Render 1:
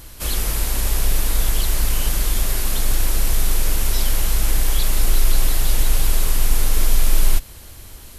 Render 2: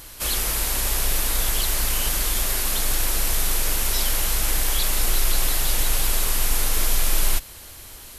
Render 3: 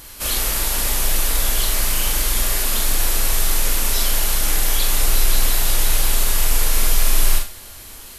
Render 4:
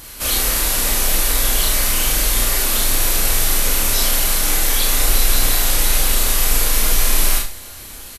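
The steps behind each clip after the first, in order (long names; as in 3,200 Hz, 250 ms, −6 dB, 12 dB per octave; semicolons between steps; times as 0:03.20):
low-shelf EQ 340 Hz −9 dB; level +2 dB
four-comb reverb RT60 0.32 s, combs from 27 ms, DRR 2.5 dB; level +1 dB
double-tracking delay 31 ms −4.5 dB; level +2 dB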